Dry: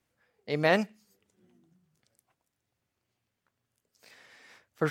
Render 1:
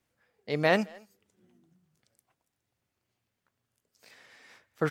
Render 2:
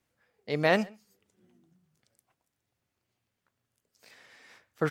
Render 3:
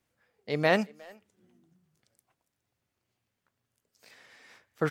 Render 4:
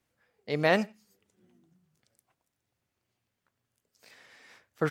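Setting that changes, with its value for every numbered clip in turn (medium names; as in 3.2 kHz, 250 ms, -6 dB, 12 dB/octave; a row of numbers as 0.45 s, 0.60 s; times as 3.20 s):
speakerphone echo, time: 220 ms, 130 ms, 360 ms, 90 ms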